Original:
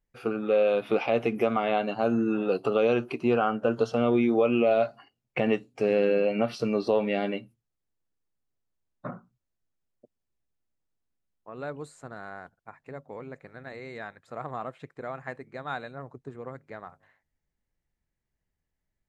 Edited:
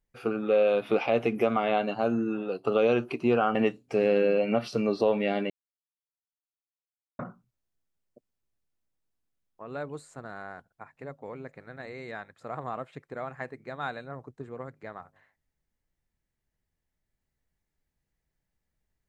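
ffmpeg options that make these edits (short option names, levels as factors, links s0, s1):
-filter_complex "[0:a]asplit=5[s0][s1][s2][s3][s4];[s0]atrim=end=2.67,asetpts=PTS-STARTPTS,afade=t=out:st=1.89:d=0.78:silence=0.354813[s5];[s1]atrim=start=2.67:end=3.552,asetpts=PTS-STARTPTS,afade=t=in:d=0.004:c=hsin:silence=0.354813[s6];[s2]atrim=start=5.418:end=7.37,asetpts=PTS-STARTPTS,afade=t=out:st=1.948:d=0.004:c=hsin[s7];[s3]atrim=start=7.37:end=9.06,asetpts=PTS-STARTPTS,volume=0[s8];[s4]atrim=start=9.06,asetpts=PTS-STARTPTS,afade=t=in:d=0.004:c=hsin[s9];[s5][s6]concat=n=2:v=0:a=1[s10];[s7][s8][s9]concat=n=3:v=0:a=1[s11];[s10][s11]acrossfade=d=0.004:c1=hsin:c2=hsin"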